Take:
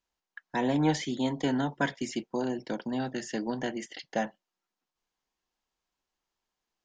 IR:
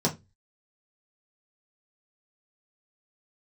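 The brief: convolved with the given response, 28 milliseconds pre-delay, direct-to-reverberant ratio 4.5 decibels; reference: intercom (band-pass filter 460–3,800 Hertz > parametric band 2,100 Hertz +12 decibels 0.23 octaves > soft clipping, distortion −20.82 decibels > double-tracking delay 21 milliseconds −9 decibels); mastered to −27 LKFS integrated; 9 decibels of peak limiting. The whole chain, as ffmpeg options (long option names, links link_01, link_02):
-filter_complex "[0:a]alimiter=limit=-22.5dB:level=0:latency=1,asplit=2[link_01][link_02];[1:a]atrim=start_sample=2205,adelay=28[link_03];[link_02][link_03]afir=irnorm=-1:irlink=0,volume=-14.5dB[link_04];[link_01][link_04]amix=inputs=2:normalize=0,highpass=460,lowpass=3800,equalizer=frequency=2100:width_type=o:width=0.23:gain=12,asoftclip=threshold=-24dB,asplit=2[link_05][link_06];[link_06]adelay=21,volume=-9dB[link_07];[link_05][link_07]amix=inputs=2:normalize=0,volume=8.5dB"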